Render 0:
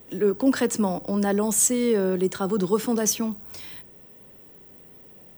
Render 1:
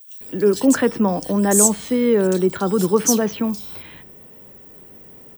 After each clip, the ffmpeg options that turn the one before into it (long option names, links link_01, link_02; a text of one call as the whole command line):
ffmpeg -i in.wav -filter_complex "[0:a]acrossover=split=3400[link_01][link_02];[link_01]adelay=210[link_03];[link_03][link_02]amix=inputs=2:normalize=0,volume=5.5dB" out.wav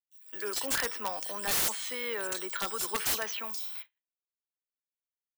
ffmpeg -i in.wav -af "agate=range=-57dB:threshold=-34dB:ratio=16:detection=peak,highpass=1300,aeval=exprs='(mod(10.6*val(0)+1,2)-1)/10.6':channel_layout=same,volume=-2dB" out.wav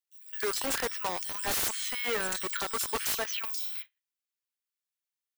ffmpeg -i in.wav -filter_complex "[0:a]equalizer=frequency=190:width=6.5:gain=-14,acrossover=split=1100[link_01][link_02];[link_01]acrusher=bits=5:mix=0:aa=0.000001[link_03];[link_02]alimiter=limit=-24dB:level=0:latency=1:release=116[link_04];[link_03][link_04]amix=inputs=2:normalize=0,volume=3dB" out.wav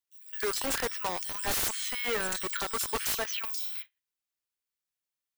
ffmpeg -i in.wav -af "lowshelf=frequency=95:gain=6" out.wav